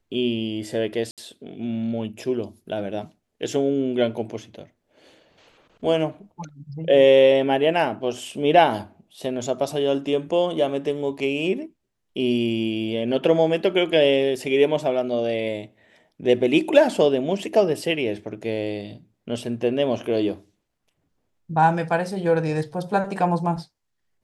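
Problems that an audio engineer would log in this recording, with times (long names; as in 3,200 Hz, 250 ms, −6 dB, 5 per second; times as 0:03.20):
0:01.11–0:01.18: drop-out 67 ms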